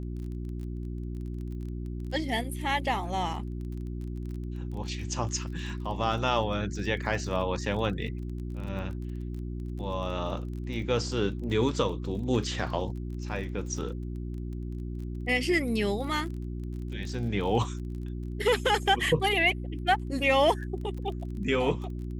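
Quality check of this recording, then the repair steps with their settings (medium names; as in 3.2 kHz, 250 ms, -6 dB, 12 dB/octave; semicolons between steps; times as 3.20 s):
crackle 22 per s -38 dBFS
hum 60 Hz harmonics 6 -35 dBFS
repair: de-click; de-hum 60 Hz, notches 6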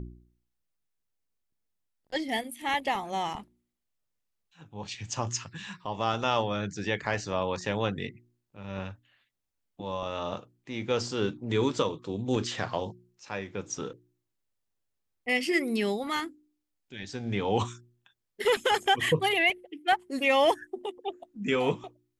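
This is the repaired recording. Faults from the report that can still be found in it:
nothing left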